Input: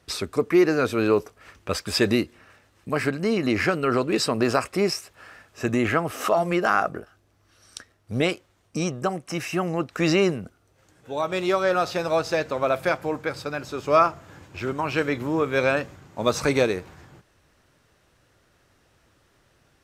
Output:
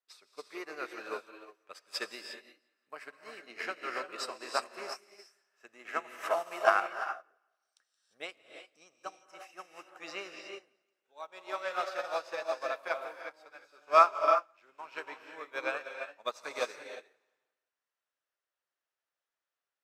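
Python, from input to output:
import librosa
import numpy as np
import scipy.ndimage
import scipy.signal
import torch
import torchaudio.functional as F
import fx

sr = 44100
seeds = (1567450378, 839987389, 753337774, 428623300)

y = scipy.signal.sosfilt(scipy.signal.butter(2, 730.0, 'highpass', fs=sr, output='sos'), x)
y = fx.high_shelf(y, sr, hz=5500.0, db=-3.5)
y = fx.echo_feedback(y, sr, ms=173, feedback_pct=43, wet_db=-17.0)
y = fx.rev_gated(y, sr, seeds[0], gate_ms=380, shape='rising', drr_db=1.0)
y = fx.upward_expand(y, sr, threshold_db=-36.0, expansion=2.5)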